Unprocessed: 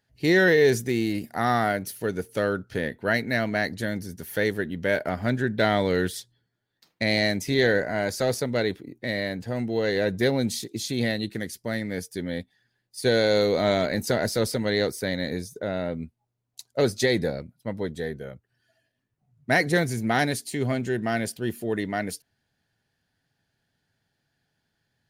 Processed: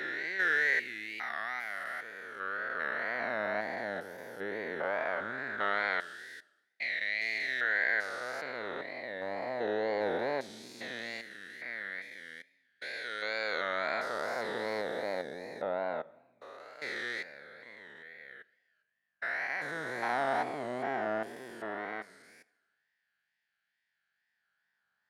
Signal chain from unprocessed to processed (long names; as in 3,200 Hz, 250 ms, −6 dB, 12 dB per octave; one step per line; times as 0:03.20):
spectrum averaged block by block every 400 ms
spectral tilt −4.5 dB per octave
hum with harmonics 50 Hz, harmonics 4, −61 dBFS −4 dB per octave
auto-filter high-pass sine 0.18 Hz 850–2,000 Hz
four-comb reverb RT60 1.1 s, combs from 27 ms, DRR 19.5 dB
tape wow and flutter 110 cents
level −1 dB